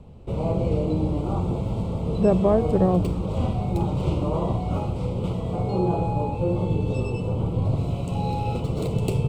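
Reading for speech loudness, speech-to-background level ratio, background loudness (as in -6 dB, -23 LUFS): -22.0 LUFS, 4.0 dB, -26.0 LUFS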